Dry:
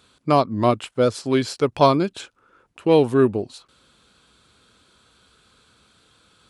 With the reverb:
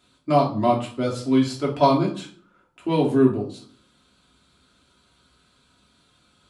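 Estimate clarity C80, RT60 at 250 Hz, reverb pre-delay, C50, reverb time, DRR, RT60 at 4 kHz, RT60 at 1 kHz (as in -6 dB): 14.5 dB, 0.70 s, 3 ms, 9.5 dB, 0.50 s, -3.5 dB, 0.35 s, 0.50 s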